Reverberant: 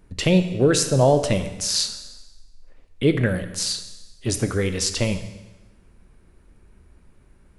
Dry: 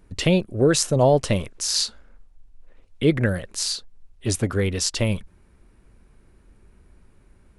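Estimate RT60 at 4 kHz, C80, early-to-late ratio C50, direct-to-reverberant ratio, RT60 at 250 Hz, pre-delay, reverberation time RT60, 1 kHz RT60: 1.1 s, 12.0 dB, 10.5 dB, 8.5 dB, 1.1 s, 10 ms, 1.1 s, 1.1 s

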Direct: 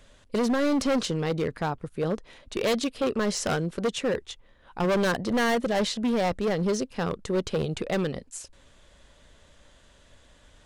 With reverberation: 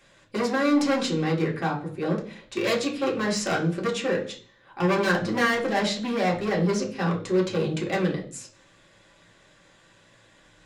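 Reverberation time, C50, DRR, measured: 0.50 s, 10.5 dB, -3.0 dB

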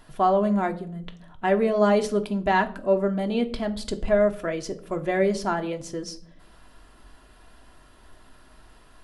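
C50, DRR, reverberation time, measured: 16.5 dB, 5.0 dB, 0.55 s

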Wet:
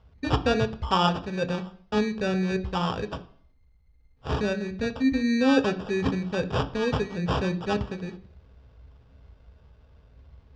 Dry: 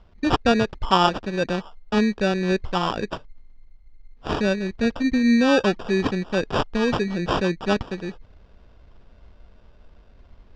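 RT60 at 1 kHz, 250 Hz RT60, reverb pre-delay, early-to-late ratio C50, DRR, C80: 0.55 s, 0.55 s, 3 ms, 16.5 dB, 7.5 dB, 20.0 dB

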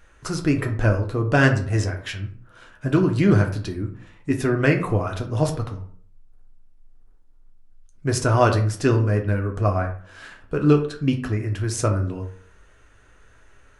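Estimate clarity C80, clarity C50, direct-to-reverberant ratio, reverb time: 14.0 dB, 10.5 dB, 3.0 dB, 0.50 s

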